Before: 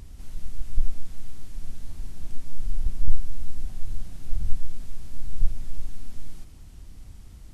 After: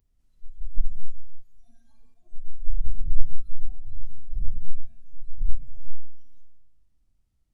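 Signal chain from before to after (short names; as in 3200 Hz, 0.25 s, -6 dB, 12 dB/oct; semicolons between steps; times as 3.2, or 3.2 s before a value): spectral noise reduction 25 dB; digital reverb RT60 1 s, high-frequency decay 0.75×, pre-delay 15 ms, DRR 1 dB; 2.14–3 envelope flanger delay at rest 11.8 ms, full sweep at -6.5 dBFS; gain -4.5 dB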